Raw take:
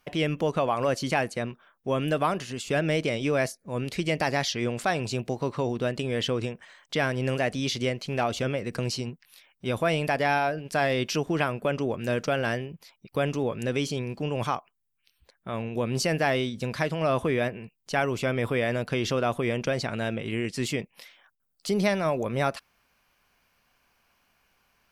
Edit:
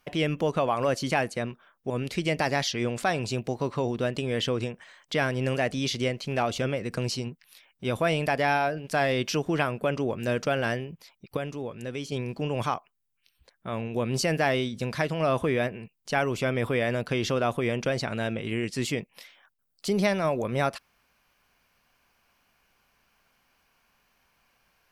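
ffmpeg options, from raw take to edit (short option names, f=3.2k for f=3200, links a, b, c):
-filter_complex "[0:a]asplit=4[a][b][c][d];[a]atrim=end=1.902[e];[b]atrim=start=3.708:end=13.182[f];[c]atrim=start=13.178:end=13.932,asetpts=PTS-STARTPTS,volume=-7dB[g];[d]atrim=start=13.928[h];[e][f]acrossfade=d=0.004:c1=hsin:c2=hsin[i];[i][g]acrossfade=d=0.004:c1=hsin:c2=hsin[j];[j][h]acrossfade=d=0.004:c1=hsin:c2=hsin"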